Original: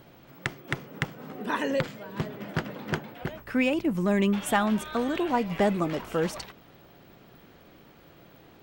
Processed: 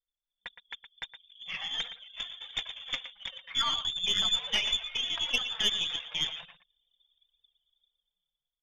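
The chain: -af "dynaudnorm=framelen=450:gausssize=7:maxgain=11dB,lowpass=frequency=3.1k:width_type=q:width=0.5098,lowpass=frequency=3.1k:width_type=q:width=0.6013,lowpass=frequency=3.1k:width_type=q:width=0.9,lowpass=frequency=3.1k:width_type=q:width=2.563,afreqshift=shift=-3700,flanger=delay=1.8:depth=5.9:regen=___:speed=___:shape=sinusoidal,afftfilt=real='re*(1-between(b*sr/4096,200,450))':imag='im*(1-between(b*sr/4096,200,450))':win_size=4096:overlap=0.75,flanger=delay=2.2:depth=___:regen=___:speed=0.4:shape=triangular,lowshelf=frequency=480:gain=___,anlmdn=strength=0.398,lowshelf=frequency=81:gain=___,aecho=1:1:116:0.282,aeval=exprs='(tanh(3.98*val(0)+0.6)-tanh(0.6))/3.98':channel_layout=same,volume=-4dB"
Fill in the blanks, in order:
44, 1.5, 4.5, 5, 11, -3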